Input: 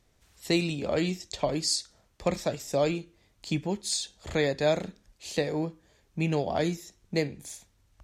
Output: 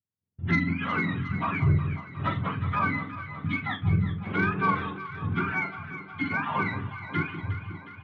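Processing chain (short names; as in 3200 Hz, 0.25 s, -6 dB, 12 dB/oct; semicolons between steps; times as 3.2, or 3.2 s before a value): spectrum mirrored in octaves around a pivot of 830 Hz; steep low-pass 3300 Hz 72 dB/oct; gate -48 dBFS, range -37 dB; in parallel at 0 dB: compressor, threshold -35 dBFS, peak gain reduction 19 dB; on the sum: soft clip -14.5 dBFS, distortion -15 dB; doubler 42 ms -10 dB; on a send: echo with dull and thin repeats by turns 0.181 s, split 1100 Hz, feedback 80%, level -9.5 dB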